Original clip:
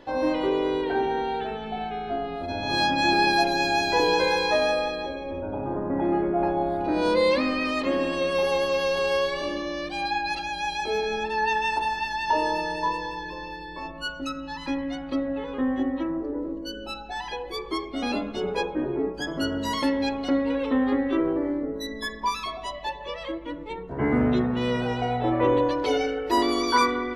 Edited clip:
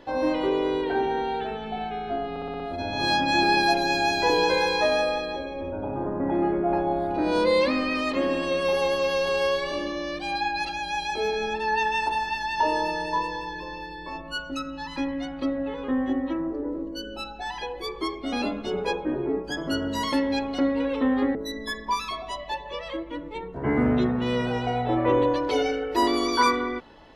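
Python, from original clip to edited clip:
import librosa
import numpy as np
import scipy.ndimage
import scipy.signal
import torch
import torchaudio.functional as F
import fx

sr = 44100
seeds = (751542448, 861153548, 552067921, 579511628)

y = fx.edit(x, sr, fx.stutter(start_s=2.3, slice_s=0.06, count=6),
    fx.cut(start_s=21.05, length_s=0.65), tone=tone)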